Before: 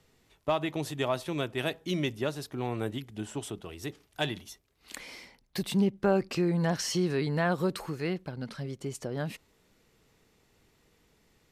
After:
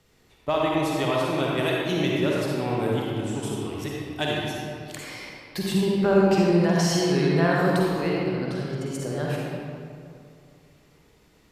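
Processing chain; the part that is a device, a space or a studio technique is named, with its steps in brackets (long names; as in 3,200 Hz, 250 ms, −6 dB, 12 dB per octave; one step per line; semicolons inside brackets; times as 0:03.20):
stairwell (convolution reverb RT60 2.4 s, pre-delay 43 ms, DRR −4 dB)
level +2 dB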